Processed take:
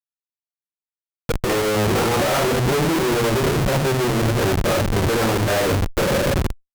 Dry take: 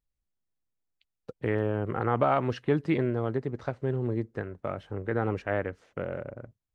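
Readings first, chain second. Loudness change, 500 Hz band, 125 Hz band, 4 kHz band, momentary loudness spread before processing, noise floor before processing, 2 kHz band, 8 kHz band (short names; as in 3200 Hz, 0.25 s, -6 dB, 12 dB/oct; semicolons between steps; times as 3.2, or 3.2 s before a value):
+10.5 dB, +10.0 dB, +10.5 dB, +24.5 dB, 11 LU, -85 dBFS, +13.5 dB, n/a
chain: dynamic EQ 580 Hz, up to +4 dB, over -39 dBFS, Q 2.7; shoebox room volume 42 m³, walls mixed, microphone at 1.2 m; Schmitt trigger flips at -30.5 dBFS; added harmonics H 8 -16 dB, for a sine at -14.5 dBFS; gain +2 dB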